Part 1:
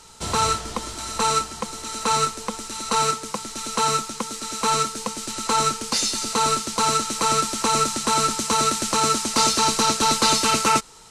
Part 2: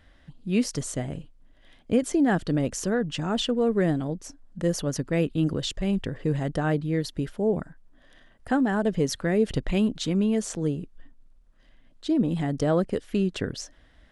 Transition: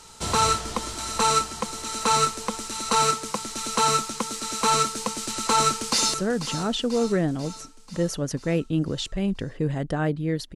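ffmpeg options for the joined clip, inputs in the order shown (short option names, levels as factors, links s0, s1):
-filter_complex "[0:a]apad=whole_dur=10.55,atrim=end=10.55,atrim=end=6.142[s0];[1:a]atrim=start=2.788:end=7.2[s1];[s0][s1]acrossfade=d=0.004:c1=hsin:c2=hsin,asplit=2[s2][s3];[s3]afade=t=in:st=5.48:d=0.01,afade=t=out:st=6.14:d=0.01,aecho=0:1:490|980|1470|1960|2450|2940|3430:0.251189|0.150713|0.0904279|0.0542567|0.032554|0.0195324|0.0117195[s4];[s2][s4]amix=inputs=2:normalize=0"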